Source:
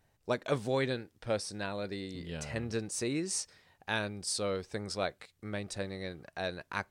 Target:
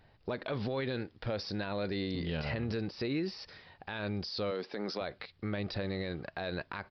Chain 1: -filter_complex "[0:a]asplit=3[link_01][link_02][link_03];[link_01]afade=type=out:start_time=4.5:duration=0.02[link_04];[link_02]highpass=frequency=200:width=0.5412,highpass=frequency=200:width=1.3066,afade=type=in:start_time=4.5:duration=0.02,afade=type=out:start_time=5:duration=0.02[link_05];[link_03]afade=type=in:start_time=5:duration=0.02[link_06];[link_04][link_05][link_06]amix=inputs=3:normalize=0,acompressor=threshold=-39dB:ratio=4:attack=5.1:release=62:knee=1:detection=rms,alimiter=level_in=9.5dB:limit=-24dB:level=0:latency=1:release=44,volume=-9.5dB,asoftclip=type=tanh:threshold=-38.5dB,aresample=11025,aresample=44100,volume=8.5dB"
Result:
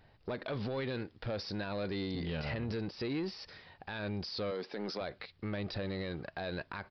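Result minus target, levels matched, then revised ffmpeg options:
soft clipping: distortion +15 dB
-filter_complex "[0:a]asplit=3[link_01][link_02][link_03];[link_01]afade=type=out:start_time=4.5:duration=0.02[link_04];[link_02]highpass=frequency=200:width=0.5412,highpass=frequency=200:width=1.3066,afade=type=in:start_time=4.5:duration=0.02,afade=type=out:start_time=5:duration=0.02[link_05];[link_03]afade=type=in:start_time=5:duration=0.02[link_06];[link_04][link_05][link_06]amix=inputs=3:normalize=0,acompressor=threshold=-39dB:ratio=4:attack=5.1:release=62:knee=1:detection=rms,alimiter=level_in=9.5dB:limit=-24dB:level=0:latency=1:release=44,volume=-9.5dB,asoftclip=type=tanh:threshold=-29dB,aresample=11025,aresample=44100,volume=8.5dB"

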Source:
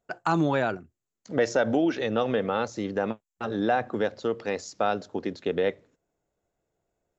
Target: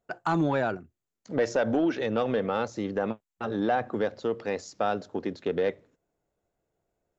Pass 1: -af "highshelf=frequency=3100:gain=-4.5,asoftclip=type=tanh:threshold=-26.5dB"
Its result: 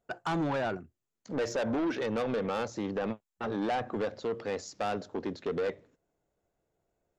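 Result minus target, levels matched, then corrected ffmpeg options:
soft clipping: distortion +12 dB
-af "highshelf=frequency=3100:gain=-4.5,asoftclip=type=tanh:threshold=-15.5dB"

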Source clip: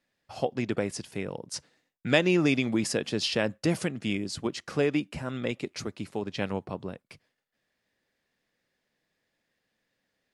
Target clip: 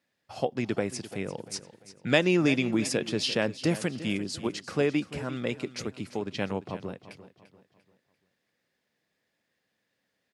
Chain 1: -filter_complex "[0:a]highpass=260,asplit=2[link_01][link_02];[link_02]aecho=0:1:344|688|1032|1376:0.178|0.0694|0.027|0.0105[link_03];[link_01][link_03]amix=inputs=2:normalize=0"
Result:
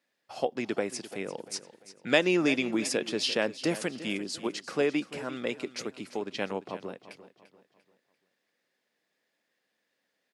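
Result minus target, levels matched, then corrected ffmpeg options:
125 Hz band −8.0 dB
-filter_complex "[0:a]highpass=74,asplit=2[link_01][link_02];[link_02]aecho=0:1:344|688|1032|1376:0.178|0.0694|0.027|0.0105[link_03];[link_01][link_03]amix=inputs=2:normalize=0"

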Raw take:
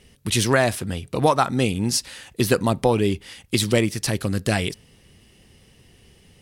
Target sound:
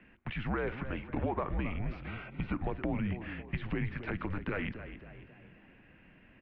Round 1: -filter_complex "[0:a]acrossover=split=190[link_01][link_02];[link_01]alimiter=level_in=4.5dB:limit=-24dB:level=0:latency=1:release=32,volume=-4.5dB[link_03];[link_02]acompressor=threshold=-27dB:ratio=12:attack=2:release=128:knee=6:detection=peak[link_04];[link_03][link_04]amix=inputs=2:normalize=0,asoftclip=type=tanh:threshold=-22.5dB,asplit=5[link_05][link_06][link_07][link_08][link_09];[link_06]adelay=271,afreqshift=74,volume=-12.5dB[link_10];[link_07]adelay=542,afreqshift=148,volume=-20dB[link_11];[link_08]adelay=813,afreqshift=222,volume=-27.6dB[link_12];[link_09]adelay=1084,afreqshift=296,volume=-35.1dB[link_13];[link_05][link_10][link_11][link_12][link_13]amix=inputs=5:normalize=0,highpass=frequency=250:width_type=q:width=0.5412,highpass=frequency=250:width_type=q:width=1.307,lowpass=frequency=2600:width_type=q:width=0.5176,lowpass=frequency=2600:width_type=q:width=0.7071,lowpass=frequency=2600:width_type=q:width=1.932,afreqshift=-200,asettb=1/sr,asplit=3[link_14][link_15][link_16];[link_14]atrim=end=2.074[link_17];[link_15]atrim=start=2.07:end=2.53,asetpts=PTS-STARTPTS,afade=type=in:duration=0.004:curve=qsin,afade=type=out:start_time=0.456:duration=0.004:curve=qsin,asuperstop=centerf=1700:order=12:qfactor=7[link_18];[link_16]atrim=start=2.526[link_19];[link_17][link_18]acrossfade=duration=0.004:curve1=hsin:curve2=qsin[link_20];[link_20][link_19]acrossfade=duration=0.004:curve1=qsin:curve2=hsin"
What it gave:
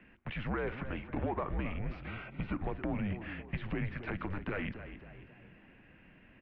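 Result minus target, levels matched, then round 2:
soft clipping: distortion +18 dB
-filter_complex "[0:a]acrossover=split=190[link_01][link_02];[link_01]alimiter=level_in=4.5dB:limit=-24dB:level=0:latency=1:release=32,volume=-4.5dB[link_03];[link_02]acompressor=threshold=-27dB:ratio=12:attack=2:release=128:knee=6:detection=peak[link_04];[link_03][link_04]amix=inputs=2:normalize=0,asoftclip=type=tanh:threshold=-12dB,asplit=5[link_05][link_06][link_07][link_08][link_09];[link_06]adelay=271,afreqshift=74,volume=-12.5dB[link_10];[link_07]adelay=542,afreqshift=148,volume=-20dB[link_11];[link_08]adelay=813,afreqshift=222,volume=-27.6dB[link_12];[link_09]adelay=1084,afreqshift=296,volume=-35.1dB[link_13];[link_05][link_10][link_11][link_12][link_13]amix=inputs=5:normalize=0,highpass=frequency=250:width_type=q:width=0.5412,highpass=frequency=250:width_type=q:width=1.307,lowpass=frequency=2600:width_type=q:width=0.5176,lowpass=frequency=2600:width_type=q:width=0.7071,lowpass=frequency=2600:width_type=q:width=1.932,afreqshift=-200,asettb=1/sr,asplit=3[link_14][link_15][link_16];[link_14]atrim=end=2.074[link_17];[link_15]atrim=start=2.07:end=2.53,asetpts=PTS-STARTPTS,afade=type=in:duration=0.004:curve=qsin,afade=type=out:start_time=0.456:duration=0.004:curve=qsin,asuperstop=centerf=1700:order=12:qfactor=7[link_18];[link_16]atrim=start=2.526[link_19];[link_17][link_18]acrossfade=duration=0.004:curve1=hsin:curve2=qsin[link_20];[link_20][link_19]acrossfade=duration=0.004:curve1=qsin:curve2=hsin"

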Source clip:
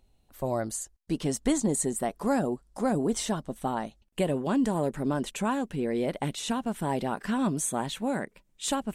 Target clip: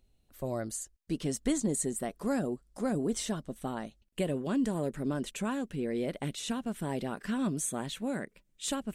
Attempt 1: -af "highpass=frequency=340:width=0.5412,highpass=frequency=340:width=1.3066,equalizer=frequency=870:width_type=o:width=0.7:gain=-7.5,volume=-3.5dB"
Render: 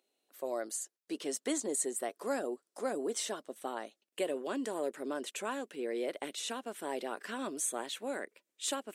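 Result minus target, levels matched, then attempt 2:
250 Hz band −5.5 dB
-af "equalizer=frequency=870:width_type=o:width=0.7:gain=-7.5,volume=-3.5dB"

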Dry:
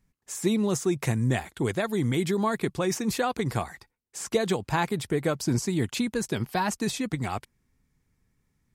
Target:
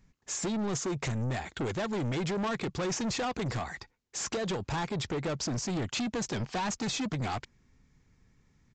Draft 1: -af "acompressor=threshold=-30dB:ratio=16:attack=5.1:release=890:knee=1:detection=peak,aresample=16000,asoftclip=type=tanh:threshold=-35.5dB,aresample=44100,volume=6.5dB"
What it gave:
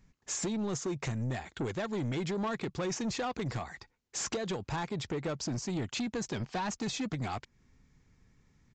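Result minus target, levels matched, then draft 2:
downward compressor: peak gain reduction +6 dB
-af "acompressor=threshold=-23.5dB:ratio=16:attack=5.1:release=890:knee=1:detection=peak,aresample=16000,asoftclip=type=tanh:threshold=-35.5dB,aresample=44100,volume=6.5dB"

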